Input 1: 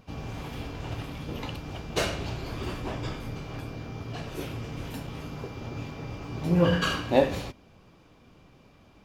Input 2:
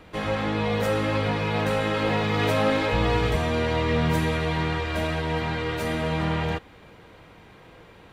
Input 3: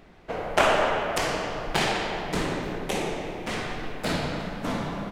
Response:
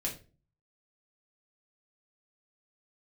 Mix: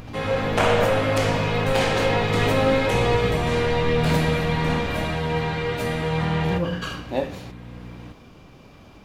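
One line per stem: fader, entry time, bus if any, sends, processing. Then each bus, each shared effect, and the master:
-4.0 dB, 0.00 s, no send, upward compressor, threshold -30 dBFS
-3.0 dB, 0.00 s, send -4 dB, hum 60 Hz, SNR 15 dB
-6.0 dB, 0.00 s, send -3 dB, none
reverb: on, RT60 0.35 s, pre-delay 4 ms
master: none

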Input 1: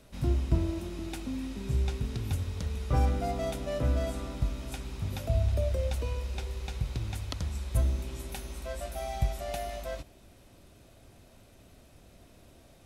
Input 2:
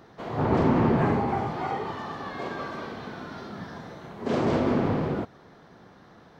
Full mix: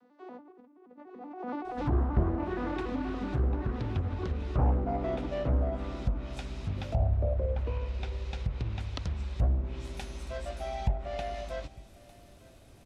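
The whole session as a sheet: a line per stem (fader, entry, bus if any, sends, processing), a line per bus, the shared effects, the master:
0.0 dB, 1.65 s, no send, echo send -22 dB, none
0.79 s -14 dB -> 1.36 s -4 dB, 0.00 s, no send, echo send -9 dB, vocoder on a broken chord minor triad, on B3, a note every 95 ms; compressor with a negative ratio -36 dBFS, ratio -1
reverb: none
echo: delay 903 ms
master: low-pass that closes with the level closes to 1.1 kHz, closed at -24.5 dBFS; loudspeaker Doppler distortion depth 0.61 ms

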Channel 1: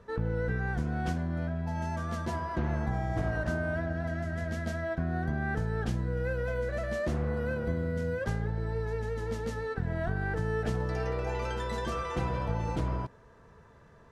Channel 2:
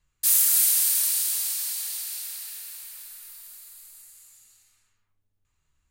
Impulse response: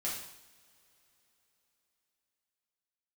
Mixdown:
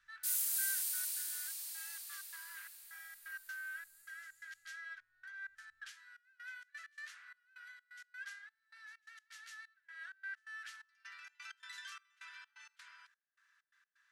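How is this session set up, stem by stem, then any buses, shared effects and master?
-5.0 dB, 0.00 s, no send, elliptic high-pass 1.5 kHz, stop band 80 dB; trance gate "xxx..xx.x." 129 bpm -24 dB
-15.5 dB, 0.00 s, no send, none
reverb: none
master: none

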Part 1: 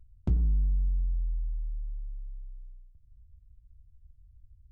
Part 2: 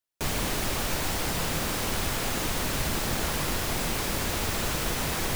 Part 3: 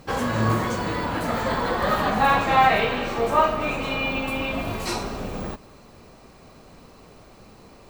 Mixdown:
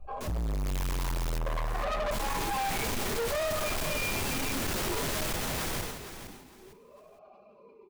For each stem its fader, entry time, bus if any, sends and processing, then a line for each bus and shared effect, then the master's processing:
-2.5 dB, 0.00 s, bus A, no send, no echo send, bass shelf 320 Hz +10.5 dB
-1.0 dB, 0.00 s, muted 0.93–2.11 s, bus A, no send, echo send -3 dB, peak limiter -26 dBFS, peak gain reduction 10 dB
-3.5 dB, 0.00 s, no bus, no send, no echo send, spectral contrast enhancement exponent 1.5; comb 4.9 ms, depth 62%; talking filter a-u 0.55 Hz
bus A: 0.0 dB, chorus voices 6, 0.86 Hz, delay 14 ms, depth 4.8 ms; peak limiter -21.5 dBFS, peak gain reduction 9.5 dB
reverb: none
echo: feedback delay 459 ms, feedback 23%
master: level rider gain up to 8 dB; hard clipper -29 dBFS, distortion -5 dB; decay stretcher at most 54 dB/s

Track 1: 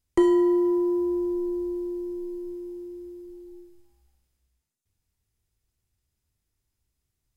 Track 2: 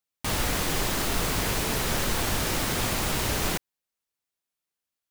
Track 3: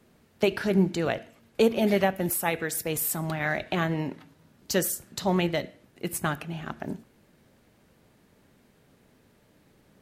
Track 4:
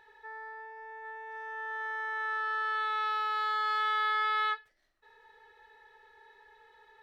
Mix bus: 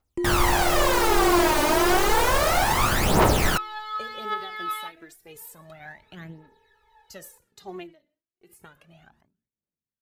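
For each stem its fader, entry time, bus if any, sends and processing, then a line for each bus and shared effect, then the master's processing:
-7.5 dB, 0.00 s, no send, peaking EQ 310 Hz +5.5 dB; peak limiter -15.5 dBFS, peak gain reduction 9.5 dB
-2.0 dB, 0.00 s, no send, peaking EQ 840 Hz +11.5 dB 2.2 oct
-17.5 dB, 2.40 s, no send, gate -48 dBFS, range -27 dB; endings held to a fixed fall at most 140 dB/s
-2.5 dB, 0.35 s, no send, peaking EQ 1.7 kHz -6 dB 0.81 oct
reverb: none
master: phaser 0.31 Hz, delay 3.4 ms, feedback 69%

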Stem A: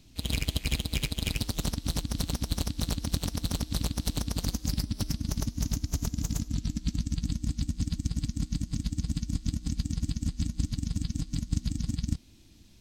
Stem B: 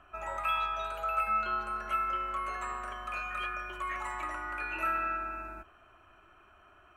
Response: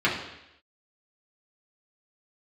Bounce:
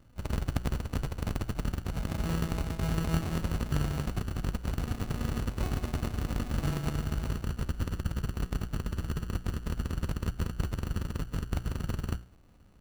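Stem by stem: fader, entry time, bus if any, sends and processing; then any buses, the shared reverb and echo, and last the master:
+0.5 dB, 0.00 s, no send, Chebyshev low-pass 7.3 kHz, order 8; hum notches 60/120/180 Hz
+2.0 dB, 1.80 s, muted 4.06–4.81 s, no send, tilt shelf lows +4.5 dB, about 690 Hz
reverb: none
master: sample-and-hold 30×; sliding maximum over 65 samples

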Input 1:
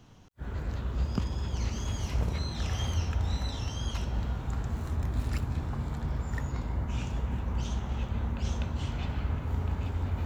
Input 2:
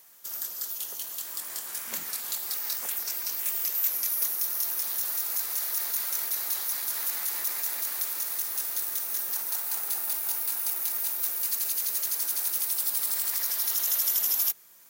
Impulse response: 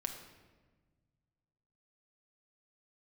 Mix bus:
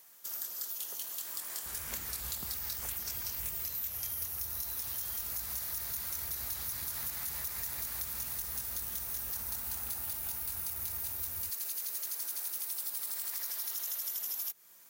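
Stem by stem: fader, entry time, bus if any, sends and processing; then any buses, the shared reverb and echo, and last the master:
-13.0 dB, 1.25 s, no send, tilt shelf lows -4.5 dB
-3.0 dB, 0.00 s, no send, none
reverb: none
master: compression, threshold -34 dBFS, peak gain reduction 9.5 dB

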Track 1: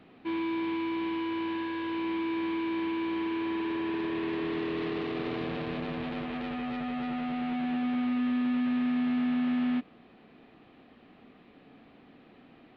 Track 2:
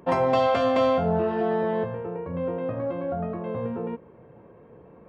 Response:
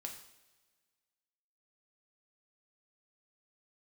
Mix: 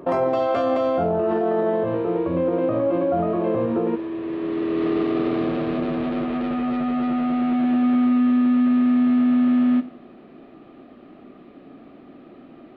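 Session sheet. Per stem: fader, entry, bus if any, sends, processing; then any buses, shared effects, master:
4.18 s -12 dB -> 4.94 s -2 dB, 0.00 s, send -3 dB, bass shelf 350 Hz +5.5 dB
+2.5 dB, 0.00 s, no send, none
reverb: on, pre-delay 3 ms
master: small resonant body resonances 350/610/1200 Hz, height 11 dB, ringing for 20 ms; peak limiter -13.5 dBFS, peak gain reduction 11 dB

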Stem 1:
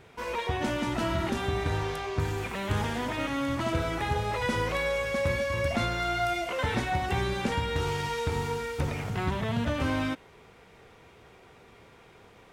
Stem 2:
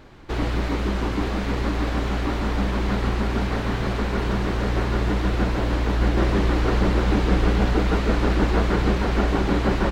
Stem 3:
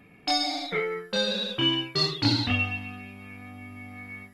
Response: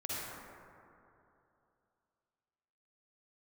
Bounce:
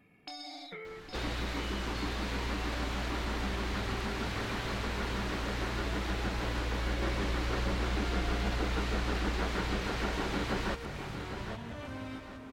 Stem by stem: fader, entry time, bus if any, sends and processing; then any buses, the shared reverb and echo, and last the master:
-1.5 dB, 2.05 s, bus A, send -12 dB, no echo send, peak limiter -25.5 dBFS, peak gain reduction 8.5 dB
-0.5 dB, 0.85 s, no bus, no send, echo send -11.5 dB, tilt shelf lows -5 dB, about 1.3 kHz
-10.0 dB, 0.00 s, bus A, no send, echo send -11 dB, peak limiter -19.5 dBFS, peak gain reduction 8 dB
bus A: 0.0 dB, compression, threshold -38 dBFS, peak gain reduction 8 dB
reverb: on, RT60 2.8 s, pre-delay 42 ms
echo: feedback delay 810 ms, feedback 28%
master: compression 1.5:1, threshold -45 dBFS, peak gain reduction 10 dB

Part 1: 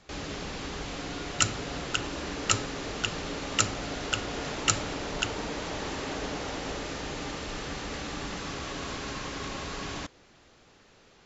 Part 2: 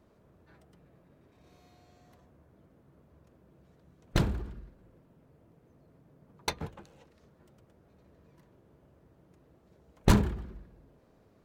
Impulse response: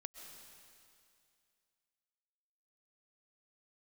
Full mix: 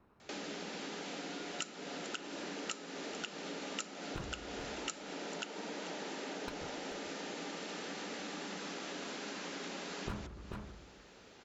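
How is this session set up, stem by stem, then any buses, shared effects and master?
+1.0 dB, 0.20 s, no send, echo send -22 dB, elliptic high-pass 180 Hz; band-stop 1.1 kHz, Q 8
0.0 dB, 0.00 s, no send, echo send -14 dB, comb filter that takes the minimum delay 0.75 ms; tone controls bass -5 dB, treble -13 dB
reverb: none
echo: delay 436 ms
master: compression 4:1, threshold -41 dBFS, peak gain reduction 19.5 dB

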